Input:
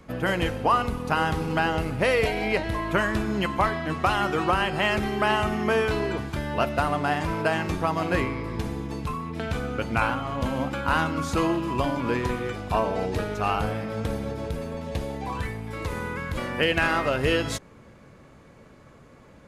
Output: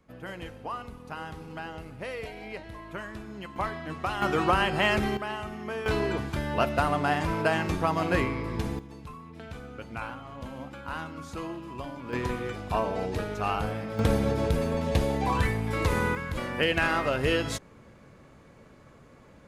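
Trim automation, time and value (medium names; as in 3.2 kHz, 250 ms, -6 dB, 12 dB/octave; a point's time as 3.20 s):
-14.5 dB
from 3.56 s -8 dB
from 4.22 s -0.5 dB
from 5.17 s -11.5 dB
from 5.86 s -1 dB
from 8.79 s -12.5 dB
from 12.13 s -3.5 dB
from 13.99 s +5 dB
from 16.15 s -2.5 dB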